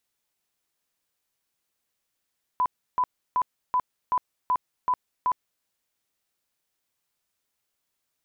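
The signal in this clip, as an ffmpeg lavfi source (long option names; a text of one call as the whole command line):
ffmpeg -f lavfi -i "aevalsrc='0.106*sin(2*PI*1000*mod(t,0.38))*lt(mod(t,0.38),58/1000)':duration=3.04:sample_rate=44100" out.wav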